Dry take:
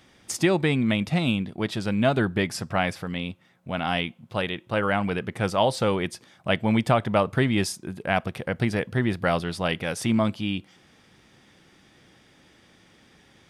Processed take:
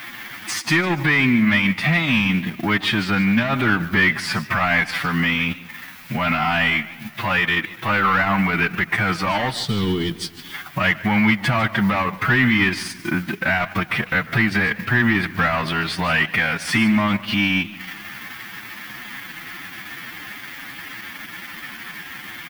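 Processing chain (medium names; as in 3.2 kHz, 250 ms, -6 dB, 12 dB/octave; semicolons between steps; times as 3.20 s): dynamic bell 9.8 kHz, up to +5 dB, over -51 dBFS, Q 1.3; overdrive pedal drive 21 dB, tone 5.1 kHz, clips at -7.5 dBFS; time-frequency box 5.71–6.32 s, 480–3000 Hz -17 dB; speed mistake 25 fps video run at 24 fps; in parallel at -4 dB: word length cut 6-bit, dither triangular; on the sum: peak limiter -15 dBFS, peak gain reduction 11 dB; delay 94 ms -15 dB; time stretch by phase-locked vocoder 1.6×; graphic EQ 125/250/500/1000/2000/8000 Hz +4/+6/-11/+4/+9/-10 dB; transient shaper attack +2 dB, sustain -10 dB; modulated delay 145 ms, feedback 60%, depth 197 cents, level -20.5 dB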